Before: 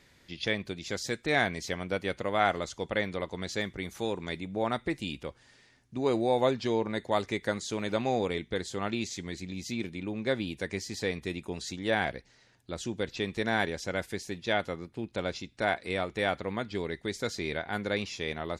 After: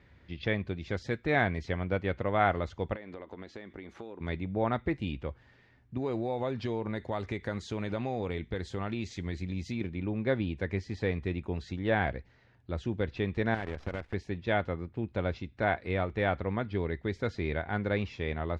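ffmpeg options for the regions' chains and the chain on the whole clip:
-filter_complex "[0:a]asettb=1/sr,asplit=3[a][b][c];[a]atrim=end=2.944[d];[b]atrim=start=2.94:end=4.21,asetpts=PTS-STARTPTS,afade=t=in:d=0.004:c=qsin,afade=t=out:st=1.266:d=0.004:c=qsin,lowshelf=f=180:t=q:w=1.5:g=-11.5,acompressor=threshold=-39dB:ratio=12:attack=3.2:release=140:knee=1:detection=peak[e];[c]atrim=start=4.206[f];[d][e]acrossfade=d=0.004:c1=hsin:c2=qsin[g];[g][f]acrossfade=d=0.004:c1=qsin:c2=hsin,asettb=1/sr,asplit=3[h][i][j];[h]atrim=end=5.974[k];[i]atrim=start=5.97:end=9.81,asetpts=PTS-STARTPTS,afade=t=in:d=0.004:c=qsin,afade=t=out:st=3.836:d=0.004:c=qsin,acompressor=threshold=-32dB:ratio=2.5:attack=3.2:release=140:knee=1:detection=peak,aemphasis=mode=production:type=50kf[l];[j]atrim=start=9.806[m];[k][l]acrossfade=d=0.004:c1=hsin:c2=qsin[n];[n][m]acrossfade=d=0.004:c1=qsin:c2=hsin,asettb=1/sr,asplit=3[o][p][q];[o]atrim=end=13.544[r];[p]atrim=start=13.54:end=14.14,asetpts=PTS-STARTPTS,afade=t=in:d=0.004:c=qsin,afade=t=out:st=0.596:d=0.004:c=qsin,highshelf=f=6.5k:g=-11.5,acompressor=threshold=-33dB:ratio=4:attack=3.2:release=140:knee=1:detection=peak,acrusher=bits=7:dc=4:mix=0:aa=0.000001[s];[q]atrim=start=14.136[t];[r][s]acrossfade=d=0.004:c1=hsin:c2=qsin[u];[u][t]acrossfade=d=0.004:c1=qsin:c2=hsin,lowpass=2.3k,equalizer=f=75:t=o:w=1.4:g=11.5"

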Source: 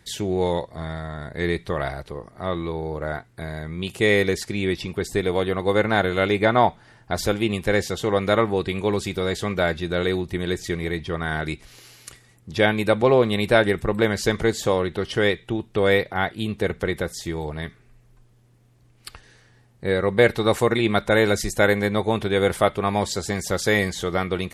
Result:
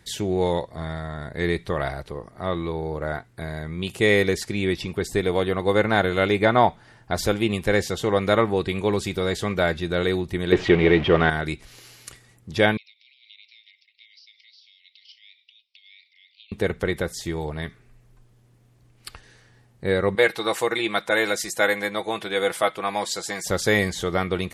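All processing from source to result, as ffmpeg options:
-filter_complex "[0:a]asettb=1/sr,asplit=3[a][b][c];[a]atrim=end=10.524[d];[b]atrim=start=10.52:end=11.3,asetpts=PTS-STARTPTS,afade=t=in:d=0.004:c=qsin,afade=t=out:st=0.776:d=0.004:c=qsin,aeval=exprs='val(0)+0.5*0.0266*sgn(val(0))':c=same,lowpass=f=2.9k:t=q:w=2.4,equalizer=f=440:t=o:w=2.8:g=10[e];[c]atrim=start=11.296[f];[d][e]acrossfade=d=0.004:c1=hsin:c2=qsin[g];[g][f]acrossfade=d=0.004:c1=qsin:c2=hsin,asettb=1/sr,asplit=3[h][i][j];[h]atrim=end=12.774[k];[i]atrim=start=12.77:end=16.52,asetpts=PTS-STARTPTS,afade=t=in:d=0.004:c=qsin,afade=t=out:st=3.746:d=0.004:c=qsin,aderivative,acompressor=threshold=-43dB:ratio=10:attack=3.2:release=140:knee=1:detection=peak,asuperpass=centerf=3400:order=20:qfactor=1[l];[j]atrim=start=16.516[m];[k][l]acrossfade=d=0.004:c1=hsin:c2=qsin[n];[n][m]acrossfade=d=0.004:c1=qsin:c2=hsin,asettb=1/sr,asplit=3[o][p][q];[o]atrim=end=20.154[r];[p]atrim=start=20.15:end=23.46,asetpts=PTS-STARTPTS,afade=t=in:d=0.004:c=qsin,afade=t=out:st=3.306:d=0.004:c=qsin,highpass=f=750:p=1,aecho=1:1:6.1:0.47,atrim=end_sample=145971[s];[q]atrim=start=23.456[t];[r][s]acrossfade=d=0.004:c1=hsin:c2=qsin[u];[u][t]acrossfade=d=0.004:c1=qsin:c2=hsin"

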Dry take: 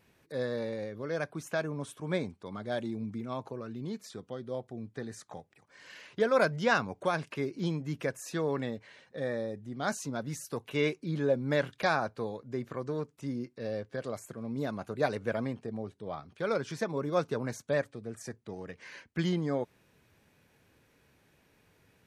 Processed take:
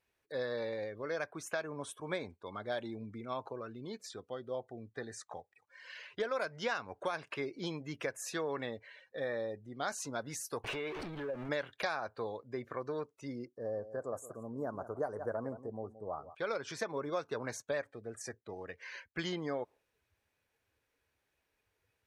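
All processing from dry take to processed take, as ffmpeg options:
-filter_complex "[0:a]asettb=1/sr,asplit=3[a][b][c];[a]atrim=end=10.644[d];[b]atrim=start=10.64:end=11.49,asetpts=PTS-STARTPTS,afade=t=in:d=0.004:c=qsin,afade=t=out:st=0.846:d=0.004:c=qsin,aeval=exprs='val(0)+0.5*0.0251*sgn(val(0))':c=same,lowpass=f=2.5k:p=1,acompressor=threshold=-33dB:ratio=6:attack=3.2:release=140:knee=1:detection=peak[e];[c]atrim=start=11.486[f];[d][e]acrossfade=d=0.004:c1=hsin:c2=qsin[g];[g][f]acrossfade=d=0.004:c1=qsin:c2=hsin,asettb=1/sr,asplit=3[h][i][j];[h]atrim=end=13.454[k];[i]atrim=start=13.45:end=16.35,asetpts=PTS-STARTPTS,afade=t=in:d=0.004:c=qsin,afade=t=out:st=2.896:d=0.004:c=qsin,asuperstop=centerf=3000:order=4:qfactor=0.53,aecho=1:1:173:0.2,atrim=end_sample=127890[l];[j]atrim=start=16.346[m];[k][l]acrossfade=d=0.004:c1=hsin:c2=qsin[n];[n][m]acrossfade=d=0.004:c1=qsin:c2=hsin,equalizer=f=170:w=0.73:g=-13,afftdn=nr=15:nf=-57,acompressor=threshold=-34dB:ratio=6,volume=2dB"

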